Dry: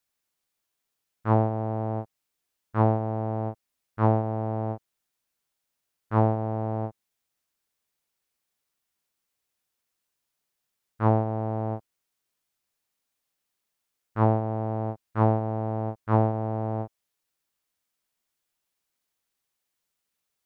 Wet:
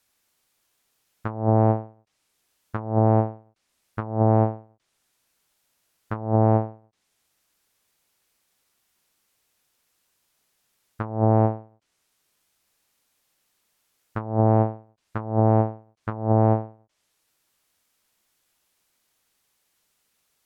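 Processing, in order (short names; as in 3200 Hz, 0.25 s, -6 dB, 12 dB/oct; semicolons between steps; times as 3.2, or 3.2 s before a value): treble ducked by the level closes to 1100 Hz, closed at -20.5 dBFS; negative-ratio compressor -28 dBFS, ratio -0.5; ending taper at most 160 dB/s; gain +9 dB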